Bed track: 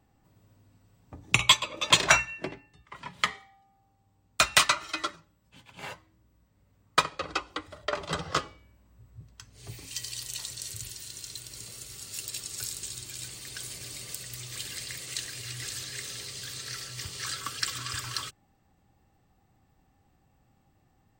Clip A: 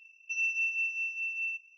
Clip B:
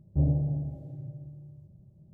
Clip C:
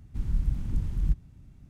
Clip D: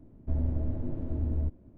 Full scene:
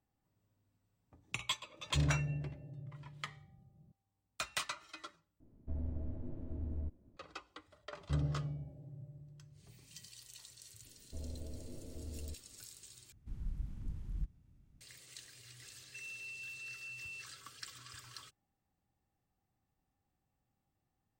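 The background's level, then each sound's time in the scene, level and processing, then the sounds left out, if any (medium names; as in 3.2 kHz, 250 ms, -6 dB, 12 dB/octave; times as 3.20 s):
bed track -17.5 dB
1.79 s: add B -8 dB
5.40 s: replace with D -10.5 dB
7.94 s: add B -10 dB
10.85 s: add D -16 dB + peaking EQ 480 Hz +11.5 dB 0.53 oct
13.12 s: replace with C -14 dB
15.65 s: add A -11.5 dB + peak limiter -32 dBFS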